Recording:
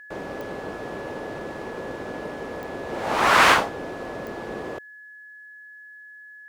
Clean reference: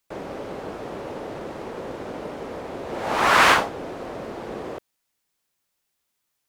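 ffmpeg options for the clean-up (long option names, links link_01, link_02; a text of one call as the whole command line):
ffmpeg -i in.wav -af "adeclick=threshold=4,bandreject=frequency=1700:width=30" out.wav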